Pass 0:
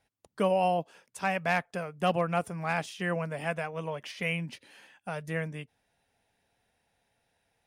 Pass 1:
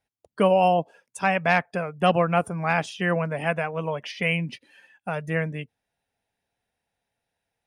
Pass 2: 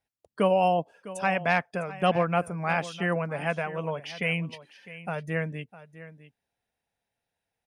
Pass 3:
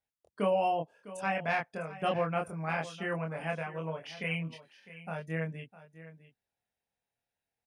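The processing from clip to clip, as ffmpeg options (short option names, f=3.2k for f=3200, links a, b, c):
-af "afftdn=nr=14:nf=-49,volume=7dB"
-af "aecho=1:1:655:0.158,volume=-3.5dB"
-filter_complex "[0:a]asplit=2[a][b];[b]adelay=25,volume=-2dB[c];[a][c]amix=inputs=2:normalize=0,volume=-8.5dB"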